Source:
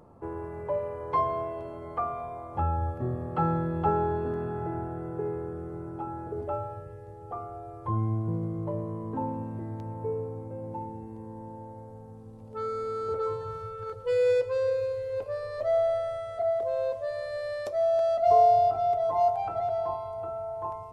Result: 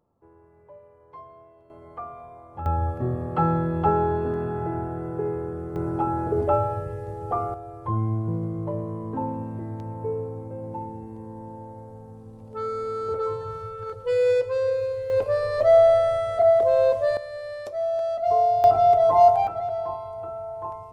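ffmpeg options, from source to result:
ffmpeg -i in.wav -af "asetnsamples=nb_out_samples=441:pad=0,asendcmd='1.7 volume volume -6dB;2.66 volume volume 4.5dB;5.76 volume volume 11dB;7.54 volume volume 3dB;15.1 volume volume 10dB;17.17 volume volume -1dB;18.64 volume volume 9dB;19.47 volume volume 1dB',volume=-18dB" out.wav

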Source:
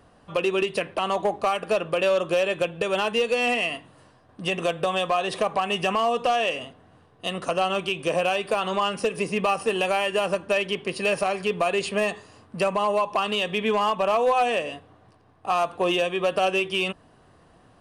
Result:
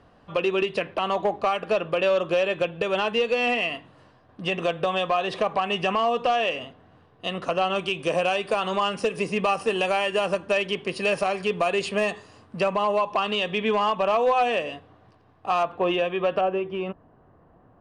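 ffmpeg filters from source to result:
ffmpeg -i in.wav -af "asetnsamples=nb_out_samples=441:pad=0,asendcmd='7.76 lowpass f 7900;12.58 lowpass f 5300;15.63 lowpass f 2700;16.41 lowpass f 1200',lowpass=4700" out.wav

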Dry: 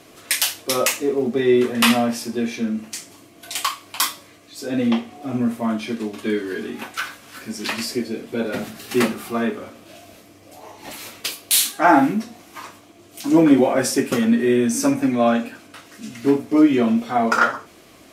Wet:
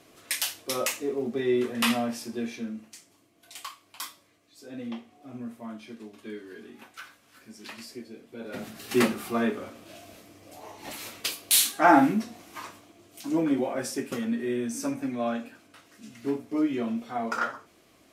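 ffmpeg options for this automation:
ffmpeg -i in.wav -af "volume=4dB,afade=type=out:start_time=2.45:duration=0.52:silence=0.398107,afade=type=in:start_time=8.4:duration=0.54:silence=0.223872,afade=type=out:start_time=12.63:duration=0.75:silence=0.398107" out.wav

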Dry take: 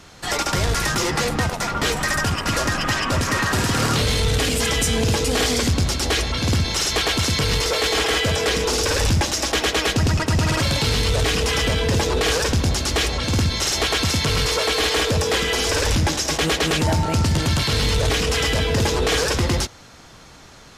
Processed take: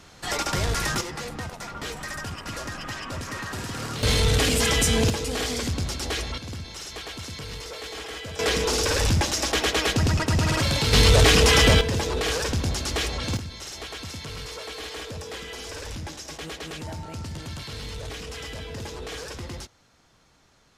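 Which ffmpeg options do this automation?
ffmpeg -i in.wav -af "asetnsamples=nb_out_samples=441:pad=0,asendcmd='1.01 volume volume -12.5dB;4.03 volume volume -1dB;5.1 volume volume -8dB;6.38 volume volume -16dB;8.39 volume volume -3dB;10.93 volume volume 4dB;11.81 volume volume -6dB;13.37 volume volume -16dB',volume=-4.5dB" out.wav

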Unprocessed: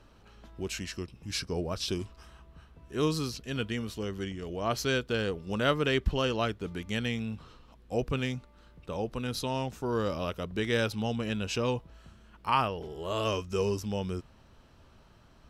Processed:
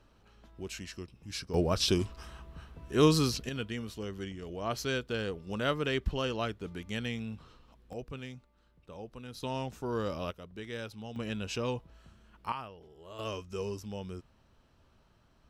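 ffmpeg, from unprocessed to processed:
ffmpeg -i in.wav -af "asetnsamples=nb_out_samples=441:pad=0,asendcmd='1.54 volume volume 5dB;3.49 volume volume -4dB;7.93 volume volume -11.5dB;9.43 volume volume -3.5dB;10.31 volume volume -12dB;11.16 volume volume -4dB;12.52 volume volume -15dB;13.19 volume volume -7.5dB',volume=-5.5dB" out.wav

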